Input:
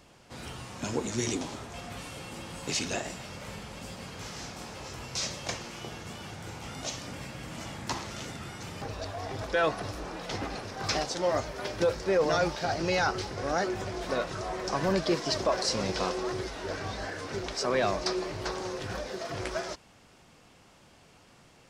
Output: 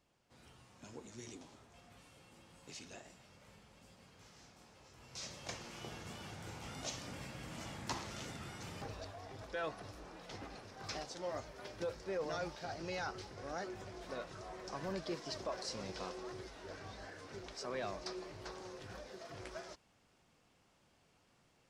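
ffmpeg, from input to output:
-af "volume=-7dB,afade=t=in:st=4.94:d=0.96:silence=0.223872,afade=t=out:st=8.75:d=0.46:silence=0.446684"

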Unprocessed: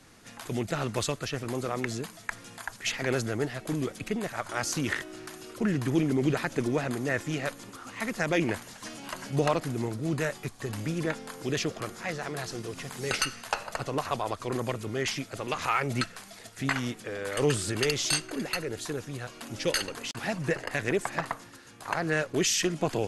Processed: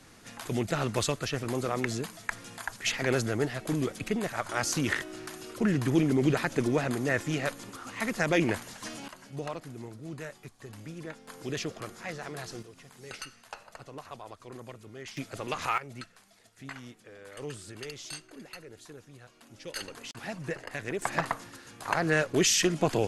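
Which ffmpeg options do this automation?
-af "asetnsamples=n=441:p=0,asendcmd='9.08 volume volume -11dB;11.28 volume volume -4.5dB;12.63 volume volume -13.5dB;15.17 volume volume -2dB;15.78 volume volume -14dB;19.76 volume volume -6.5dB;21.02 volume volume 2dB',volume=1dB"

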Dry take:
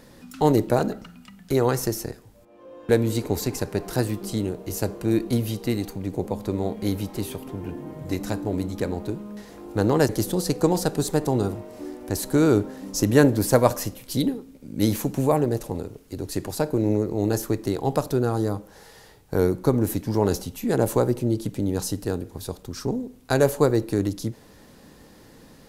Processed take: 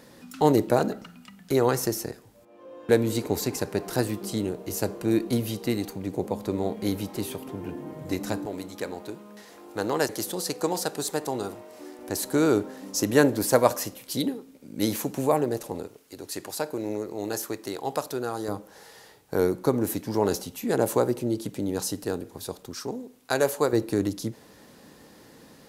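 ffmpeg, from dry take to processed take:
-af "asetnsamples=n=441:p=0,asendcmd='8.46 highpass f 730;11.99 highpass f 340;15.87 highpass f 800;18.48 highpass f 280;22.74 highpass f 600;23.73 highpass f 170',highpass=f=170:p=1"

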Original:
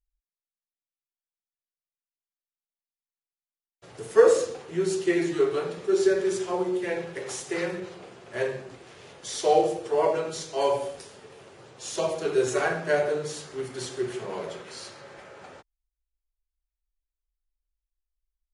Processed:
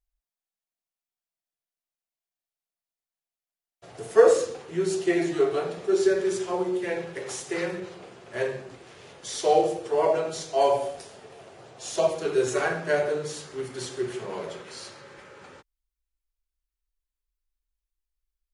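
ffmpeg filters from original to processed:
-af "asetnsamples=n=441:p=0,asendcmd='4.34 equalizer g -0.5;4.94 equalizer g 10;5.96 equalizer g 0.5;10.09 equalizer g 10;12.07 equalizer g -2;14.99 equalizer g -13.5',equalizer=f=690:t=o:w=0.26:g=9"

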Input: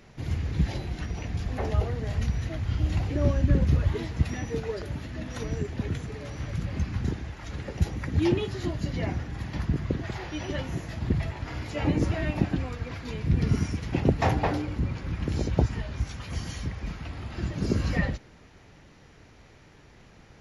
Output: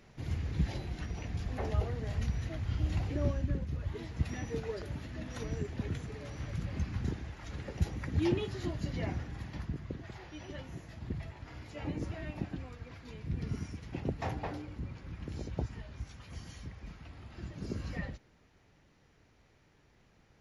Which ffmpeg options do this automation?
-af "volume=4dB,afade=t=out:st=3.12:d=0.57:silence=0.316228,afade=t=in:st=3.69:d=0.7:silence=0.316228,afade=t=out:st=9.22:d=0.56:silence=0.473151"

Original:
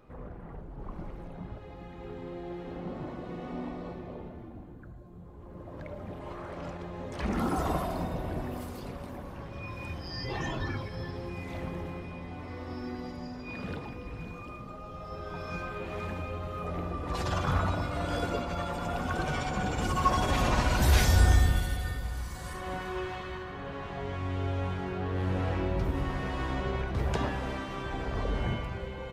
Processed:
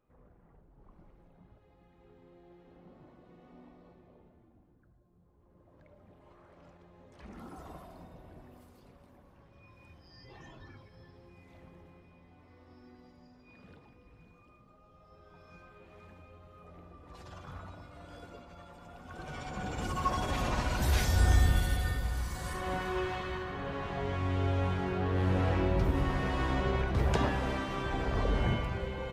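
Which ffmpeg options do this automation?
-af "volume=1.5dB,afade=t=in:st=19.03:d=0.75:silence=0.237137,afade=t=in:st=21.12:d=0.63:silence=0.446684"

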